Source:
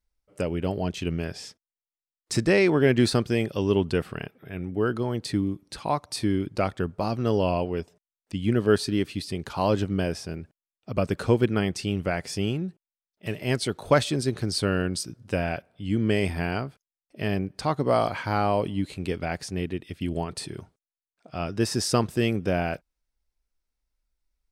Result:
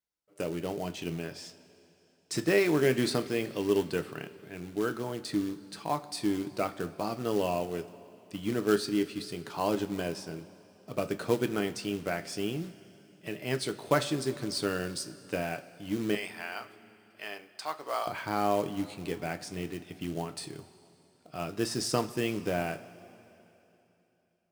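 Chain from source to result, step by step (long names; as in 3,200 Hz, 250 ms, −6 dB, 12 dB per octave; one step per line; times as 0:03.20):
high-pass filter 170 Hz 12 dB per octave, from 0:16.15 870 Hz, from 0:18.07 140 Hz
floating-point word with a short mantissa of 2 bits
coupled-rooms reverb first 0.23 s, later 3.2 s, from −18 dB, DRR 7.5 dB
level −5.5 dB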